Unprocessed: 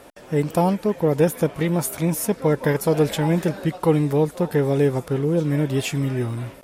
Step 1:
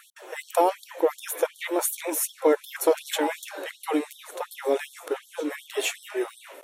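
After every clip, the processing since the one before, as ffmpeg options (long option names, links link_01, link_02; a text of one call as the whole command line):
ffmpeg -i in.wav -af "bandreject=frequency=4900:width=5.5,afftfilt=real='re*gte(b*sr/1024,260*pow(3200/260,0.5+0.5*sin(2*PI*2.7*pts/sr)))':imag='im*gte(b*sr/1024,260*pow(3200/260,0.5+0.5*sin(2*PI*2.7*pts/sr)))':win_size=1024:overlap=0.75,volume=1dB" out.wav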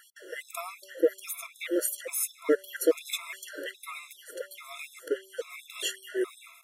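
ffmpeg -i in.wav -af "asuperstop=centerf=820:order=4:qfactor=1.2,bandreject=frequency=191.8:width_type=h:width=4,bandreject=frequency=383.6:width_type=h:width=4,bandreject=frequency=575.4:width_type=h:width=4,afftfilt=real='re*gt(sin(2*PI*1.2*pts/sr)*(1-2*mod(floor(b*sr/1024/680),2)),0)':imag='im*gt(sin(2*PI*1.2*pts/sr)*(1-2*mod(floor(b*sr/1024/680),2)),0)':win_size=1024:overlap=0.75" out.wav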